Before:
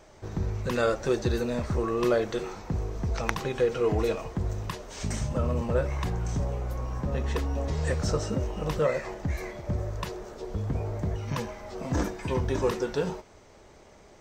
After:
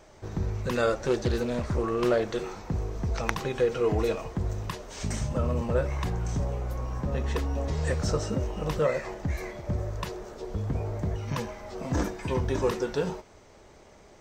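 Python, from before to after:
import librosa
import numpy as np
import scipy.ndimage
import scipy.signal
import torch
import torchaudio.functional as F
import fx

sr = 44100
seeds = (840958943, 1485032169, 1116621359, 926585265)

y = fx.doppler_dist(x, sr, depth_ms=0.28, at=(0.92, 2.37))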